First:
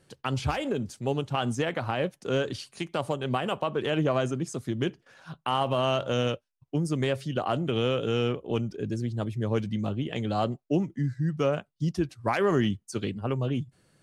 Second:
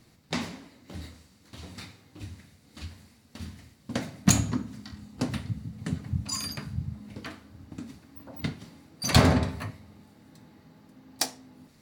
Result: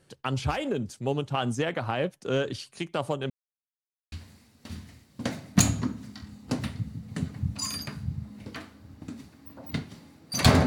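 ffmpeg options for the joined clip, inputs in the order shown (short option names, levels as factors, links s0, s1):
-filter_complex "[0:a]apad=whole_dur=10.66,atrim=end=10.66,asplit=2[s0][s1];[s0]atrim=end=3.3,asetpts=PTS-STARTPTS,afade=t=out:st=3.296:d=0.004:c=hsin[s2];[s1]atrim=start=3.3:end=4.12,asetpts=PTS-STARTPTS,volume=0[s3];[1:a]atrim=start=2.82:end=9.36,asetpts=PTS-STARTPTS,afade=t=in:d=0.004:c=hsin[s4];[s2][s3][s4]concat=n=3:v=0:a=1"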